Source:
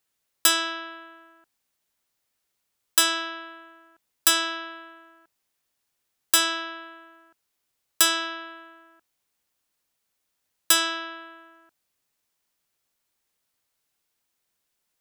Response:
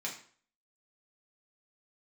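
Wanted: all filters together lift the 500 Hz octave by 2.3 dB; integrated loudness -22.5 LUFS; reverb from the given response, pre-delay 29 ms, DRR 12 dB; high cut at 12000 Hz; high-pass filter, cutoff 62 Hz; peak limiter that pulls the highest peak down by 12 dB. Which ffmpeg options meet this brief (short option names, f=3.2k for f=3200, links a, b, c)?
-filter_complex "[0:a]highpass=62,lowpass=12k,equalizer=f=500:t=o:g=4,alimiter=limit=-19dB:level=0:latency=1,asplit=2[a][b];[1:a]atrim=start_sample=2205,adelay=29[c];[b][c]afir=irnorm=-1:irlink=0,volume=-14dB[d];[a][d]amix=inputs=2:normalize=0,volume=7dB"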